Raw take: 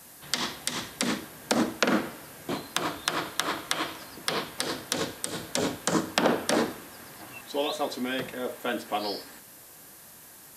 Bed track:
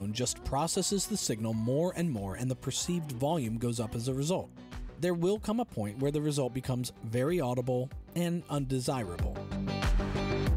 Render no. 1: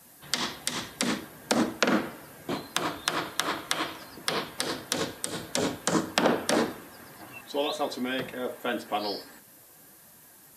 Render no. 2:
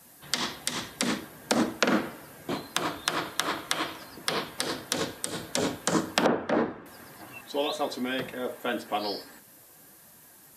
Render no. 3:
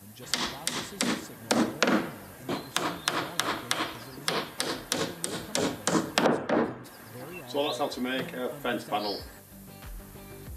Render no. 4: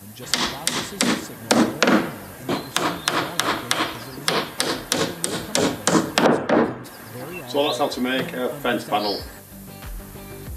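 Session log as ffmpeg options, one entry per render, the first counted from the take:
-af "afftdn=nr=6:nf=-50"
-filter_complex "[0:a]asettb=1/sr,asplit=3[s0][s1][s2];[s0]atrim=end=6.264[s3];[s1]atrim=start=6.26:end=6.86,asetpts=PTS-STARTPTS,afade=t=in:d=0.004:c=qsin,afade=t=out:st=0.596:d=0.004:c=qsin,lowpass=1800[s4];[s2]atrim=start=6.856[s5];[s3][s4]acrossfade=d=0.004:c1=hsin:c2=qsin[s6];[s6][s5]acrossfade=d=0.004:c1=qsin:c2=hsin"
-filter_complex "[1:a]volume=0.188[s0];[0:a][s0]amix=inputs=2:normalize=0"
-af "volume=2.51,alimiter=limit=0.794:level=0:latency=1"

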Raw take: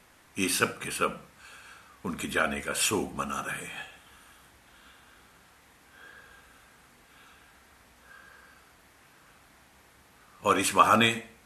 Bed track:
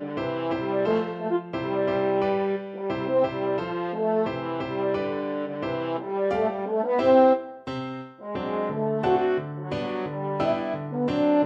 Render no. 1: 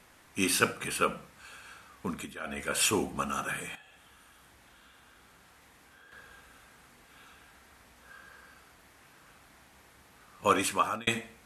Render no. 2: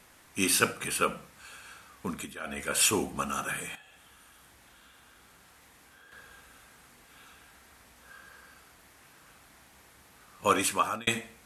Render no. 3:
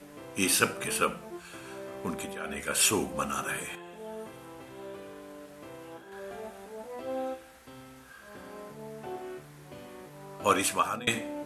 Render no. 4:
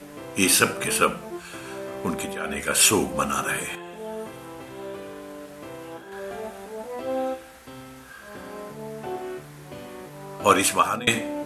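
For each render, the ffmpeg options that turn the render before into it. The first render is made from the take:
-filter_complex "[0:a]asettb=1/sr,asplit=3[s0][s1][s2];[s0]atrim=end=3.754[s3];[s1]atrim=start=3.75:end=6.12,asetpts=PTS-STARTPTS,afade=t=in:d=0.004:c=qsin,afade=t=out:st=2.366:d=0.004:c=qsin,acompressor=threshold=0.002:ratio=4:attack=3.2:release=140:knee=1:detection=peak[s4];[s2]atrim=start=6.116[s5];[s3][s4]acrossfade=d=0.004:c1=hsin:c2=qsin[s6];[s6][s5]acrossfade=d=0.004:c1=qsin:c2=hsin,asplit=4[s7][s8][s9][s10];[s7]atrim=end=2.35,asetpts=PTS-STARTPTS,afade=t=out:st=2.06:d=0.29:silence=0.158489[s11];[s8]atrim=start=2.35:end=2.4,asetpts=PTS-STARTPTS,volume=0.158[s12];[s9]atrim=start=2.4:end=11.07,asetpts=PTS-STARTPTS,afade=t=in:d=0.29:silence=0.158489,afade=t=out:st=8.06:d=0.61[s13];[s10]atrim=start=11.07,asetpts=PTS-STARTPTS,afade=t=in:d=0.004:c=hsin[s14];[s11][s12][s13][s14]concat=n=4:v=0:a=1"
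-af "highshelf=f=5100:g=5"
-filter_complex "[1:a]volume=0.133[s0];[0:a][s0]amix=inputs=2:normalize=0"
-af "volume=2.24,alimiter=limit=0.794:level=0:latency=1"

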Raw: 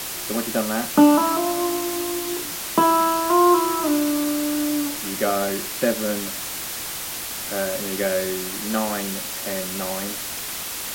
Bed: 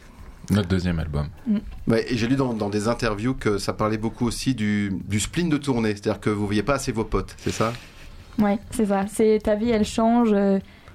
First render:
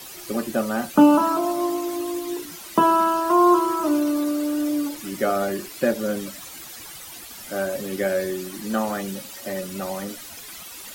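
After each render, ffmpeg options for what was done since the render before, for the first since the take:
-af "afftdn=nr=13:nf=-31"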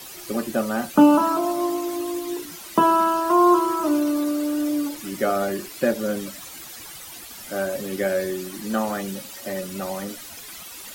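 -af anull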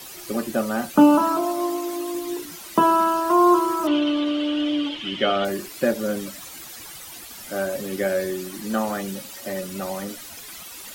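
-filter_complex "[0:a]asettb=1/sr,asplit=3[s0][s1][s2];[s0]atrim=end=1.434[s3];[s1]atrim=start=1.43:end=2.15,asetpts=PTS-STARTPTS,afade=t=in:d=0.004:c=qsin,afade=t=out:st=0.716:d=0.004:c=qsin,equalizer=f=70:w=0.7:g=-11[s4];[s2]atrim=start=2.146[s5];[s3][s4]acrossfade=d=0.004:c1=hsin:c2=qsin[s6];[s6][s5]acrossfade=d=0.004:c1=qsin:c2=hsin,asettb=1/sr,asplit=3[s7][s8][s9];[s7]atrim=end=3.874[s10];[s8]atrim=start=3.87:end=5.45,asetpts=PTS-STARTPTS,afade=t=in:d=0.004:c=qsin,afade=t=out:st=1.576:d=0.004:c=qsin,lowpass=f=3100:t=q:w=11[s11];[s9]atrim=start=5.446[s12];[s10][s11]acrossfade=d=0.004:c1=hsin:c2=qsin[s13];[s13][s12]acrossfade=d=0.004:c1=qsin:c2=hsin"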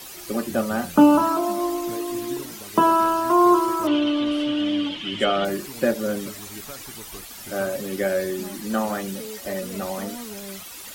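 -filter_complex "[1:a]volume=0.112[s0];[0:a][s0]amix=inputs=2:normalize=0"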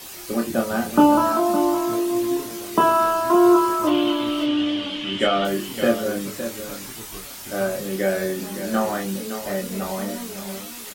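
-filter_complex "[0:a]asplit=2[s0][s1];[s1]adelay=26,volume=0.668[s2];[s0][s2]amix=inputs=2:normalize=0,aecho=1:1:563:0.299"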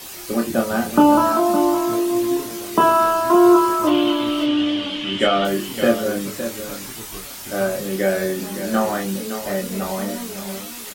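-af "volume=1.33,alimiter=limit=0.708:level=0:latency=1"

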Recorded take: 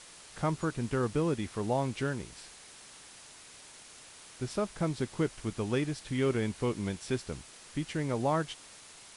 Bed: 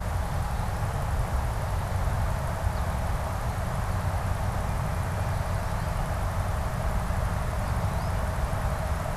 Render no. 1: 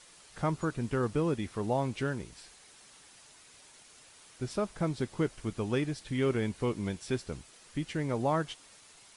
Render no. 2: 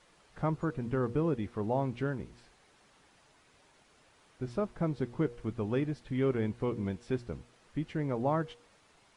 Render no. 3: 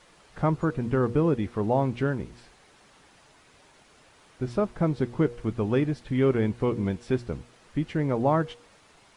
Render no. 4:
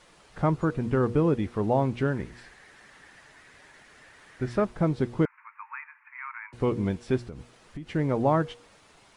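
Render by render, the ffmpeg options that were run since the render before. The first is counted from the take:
-af "afftdn=nr=6:nf=-52"
-af "lowpass=f=1300:p=1,bandreject=f=119.5:t=h:w=4,bandreject=f=239:t=h:w=4,bandreject=f=358.5:t=h:w=4,bandreject=f=478:t=h:w=4"
-af "volume=2.24"
-filter_complex "[0:a]asettb=1/sr,asplit=3[s0][s1][s2];[s0]atrim=end=2.154[s3];[s1]atrim=start=2.15:end=4.65,asetpts=PTS-STARTPTS,afade=t=in:d=0.004:c=qsin,afade=t=out:st=2.496:d=0.004:c=qsin,equalizer=f=1800:t=o:w=0.48:g=12.5[s4];[s2]atrim=start=4.646[s5];[s3][s4]acrossfade=d=0.004:c1=hsin:c2=qsin[s6];[s6][s5]acrossfade=d=0.004:c1=qsin:c2=hsin,asettb=1/sr,asplit=3[s7][s8][s9];[s7]atrim=end=5.254[s10];[s8]atrim=start=5.25:end=6.53,asetpts=PTS-STARTPTS,afade=t=in:d=0.004:c=qsin,afade=t=out:st=1.276:d=0.004:c=qsin,asuperpass=centerf=1500:order=20:qfactor=0.94[s11];[s9]atrim=start=6.526[s12];[s10][s11]acrossfade=d=0.004:c1=hsin:c2=qsin[s13];[s13][s12]acrossfade=d=0.004:c1=qsin:c2=hsin,asettb=1/sr,asplit=3[s14][s15][s16];[s14]atrim=end=7.254[s17];[s15]atrim=start=7.25:end=7.94,asetpts=PTS-STARTPTS,afade=t=in:d=0.004:c=qsin,afade=t=out:st=0.686:d=0.004:c=qsin,acompressor=threshold=0.02:ratio=8:attack=3.2:release=140:knee=1:detection=peak[s18];[s16]atrim=start=7.936[s19];[s17][s18]acrossfade=d=0.004:c1=hsin:c2=qsin[s20];[s20][s19]acrossfade=d=0.004:c1=qsin:c2=hsin"

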